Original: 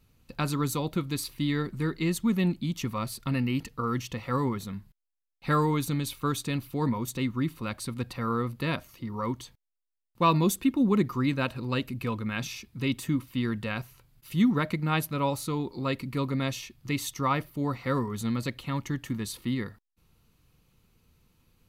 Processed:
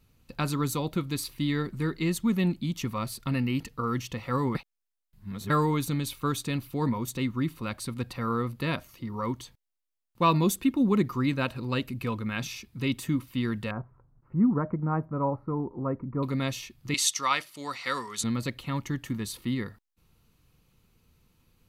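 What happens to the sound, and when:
4.55–5.5 reverse
13.71–16.23 inverse Chebyshev low-pass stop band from 3200 Hz, stop band 50 dB
16.94–18.24 weighting filter ITU-R 468

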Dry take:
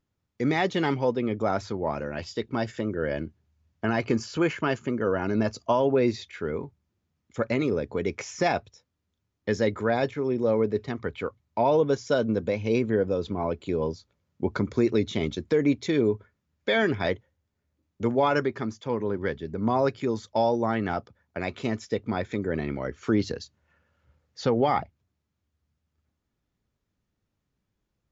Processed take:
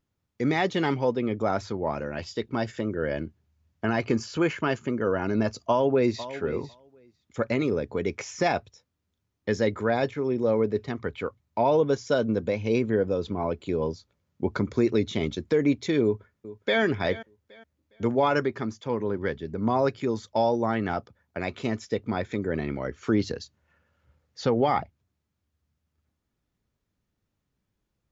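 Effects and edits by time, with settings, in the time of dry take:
5.51–6.29 echo throw 0.5 s, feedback 10%, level -14 dB
16.03–16.81 echo throw 0.41 s, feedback 30%, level -16.5 dB

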